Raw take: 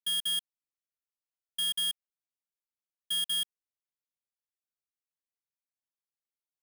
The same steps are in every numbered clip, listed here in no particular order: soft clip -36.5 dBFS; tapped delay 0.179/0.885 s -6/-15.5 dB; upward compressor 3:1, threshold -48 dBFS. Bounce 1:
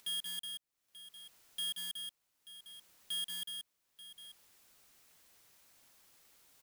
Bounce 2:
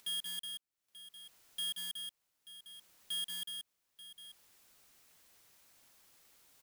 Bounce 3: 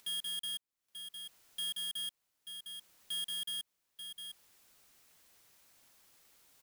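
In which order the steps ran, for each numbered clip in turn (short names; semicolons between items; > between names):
soft clip > upward compressor > tapped delay; upward compressor > soft clip > tapped delay; upward compressor > tapped delay > soft clip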